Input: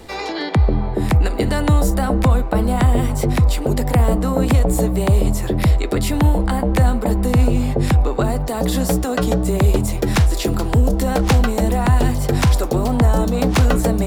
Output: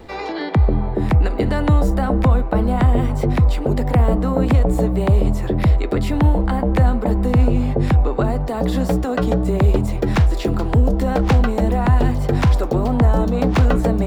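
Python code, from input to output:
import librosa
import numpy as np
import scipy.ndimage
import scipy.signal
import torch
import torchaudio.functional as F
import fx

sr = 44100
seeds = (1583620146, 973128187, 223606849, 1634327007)

y = fx.peak_eq(x, sr, hz=11000.0, db=-15.0, octaves=2.0)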